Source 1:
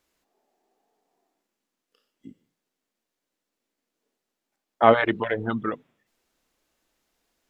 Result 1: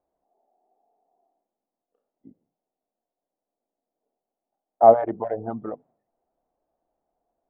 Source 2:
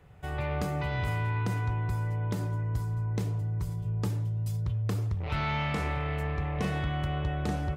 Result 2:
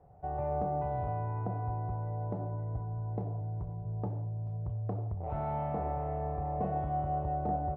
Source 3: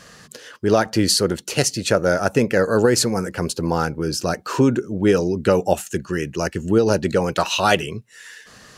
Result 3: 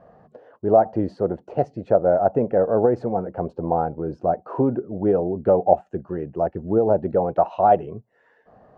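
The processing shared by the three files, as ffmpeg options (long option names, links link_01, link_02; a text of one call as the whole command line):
ffmpeg -i in.wav -af "lowpass=frequency=720:width_type=q:width=4.6,volume=-6dB" out.wav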